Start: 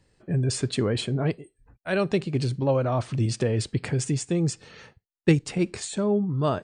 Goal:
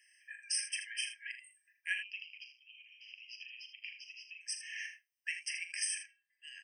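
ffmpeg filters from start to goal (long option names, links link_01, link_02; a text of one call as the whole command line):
ffmpeg -i in.wav -filter_complex "[0:a]acompressor=threshold=-35dB:ratio=2.5,asettb=1/sr,asplit=3[link_01][link_02][link_03];[link_01]atrim=end=1.954[link_04];[link_02]atrim=start=1.95:end=4.41,asetpts=PTS-STARTPTS,afade=type=in:duration=0.004:curve=qsin,afade=type=out:start_time=2.456:duration=0.004:curve=qsin,asuperpass=centerf=3400:order=8:qfactor=1.6[link_05];[link_03]atrim=start=4.406[link_06];[link_04][link_05]acrossfade=duration=0.004:curve1=hsin:curve2=qsin[link_07];[link_07][link_06]acrossfade=duration=0.004:curve1=qsin:curve2=hsin,aecho=1:1:40|80:0.316|0.316,afftfilt=real='re*eq(mod(floor(b*sr/1024/1600),2),1)':imag='im*eq(mod(floor(b*sr/1024/1600),2),1)':win_size=1024:overlap=0.75,volume=7dB" out.wav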